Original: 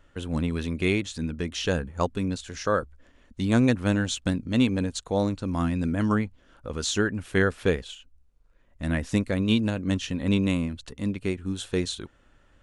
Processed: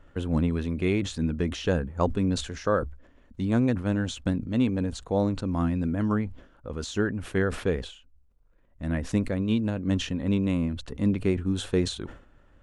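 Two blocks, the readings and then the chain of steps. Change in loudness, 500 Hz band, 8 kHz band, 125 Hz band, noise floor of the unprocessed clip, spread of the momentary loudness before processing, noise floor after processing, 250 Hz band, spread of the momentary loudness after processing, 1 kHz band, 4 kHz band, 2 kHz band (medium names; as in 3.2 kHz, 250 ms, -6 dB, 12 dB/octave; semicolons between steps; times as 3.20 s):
-1.0 dB, -0.5 dB, -5.5 dB, 0.0 dB, -61 dBFS, 9 LU, -59 dBFS, -0.5 dB, 7 LU, -2.0 dB, -4.0 dB, -5.0 dB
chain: gain riding 0.5 s; treble shelf 2.1 kHz -11 dB; decay stretcher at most 110 dB/s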